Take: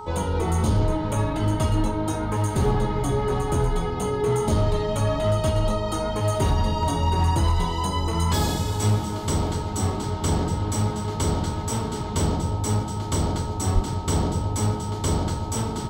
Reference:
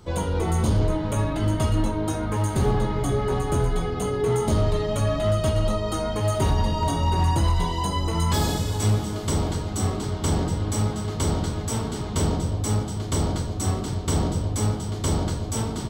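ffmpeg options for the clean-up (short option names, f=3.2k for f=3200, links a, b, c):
-filter_complex "[0:a]bandreject=f=425.8:t=h:w=4,bandreject=f=851.6:t=h:w=4,bandreject=f=1.2774k:t=h:w=4,bandreject=f=920:w=30,asplit=3[a][b][c];[a]afade=t=out:st=13.74:d=0.02[d];[b]highpass=f=140:w=0.5412,highpass=f=140:w=1.3066,afade=t=in:st=13.74:d=0.02,afade=t=out:st=13.86:d=0.02[e];[c]afade=t=in:st=13.86:d=0.02[f];[d][e][f]amix=inputs=3:normalize=0"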